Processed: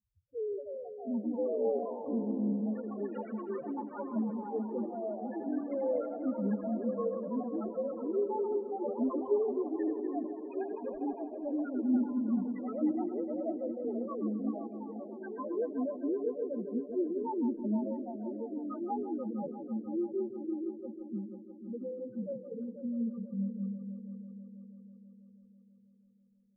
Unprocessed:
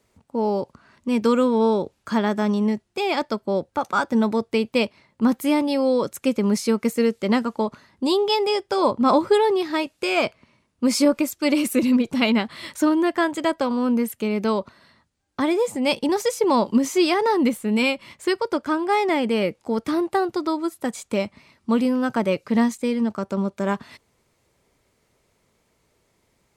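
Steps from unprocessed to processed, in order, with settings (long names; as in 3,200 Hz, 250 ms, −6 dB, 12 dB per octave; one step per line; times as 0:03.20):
running median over 25 samples
low-pass that shuts in the quiet parts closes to 370 Hz, open at −16.5 dBFS
flanger 0.18 Hz, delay 1 ms, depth 9.4 ms, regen +10%
spectral peaks only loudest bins 1
on a send: echo machine with several playback heads 163 ms, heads first and third, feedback 64%, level −11.5 dB
on the sum: delay with pitch and tempo change per echo 388 ms, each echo +4 semitones, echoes 3, each echo −6 dB
every ending faded ahead of time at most 400 dB per second
level −5 dB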